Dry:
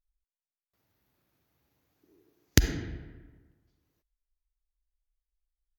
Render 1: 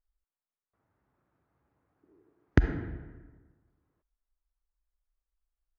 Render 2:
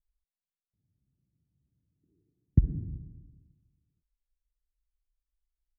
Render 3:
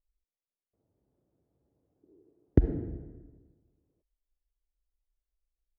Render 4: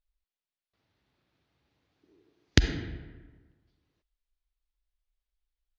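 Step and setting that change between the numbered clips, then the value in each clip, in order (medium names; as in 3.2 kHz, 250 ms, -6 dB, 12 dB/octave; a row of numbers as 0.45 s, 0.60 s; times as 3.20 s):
resonant low-pass, frequency: 1.3 kHz, 160 Hz, 510 Hz, 3.9 kHz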